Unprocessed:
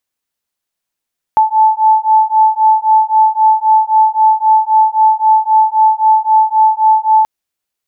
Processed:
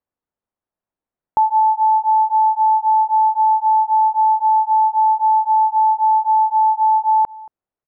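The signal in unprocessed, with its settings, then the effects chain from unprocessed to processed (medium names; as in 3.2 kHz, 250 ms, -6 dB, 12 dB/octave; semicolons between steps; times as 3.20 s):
beating tones 871 Hz, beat 3.8 Hz, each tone -10 dBFS 5.88 s
low-pass 1 kHz 12 dB/octave; peak limiter -9.5 dBFS; delay 228 ms -22 dB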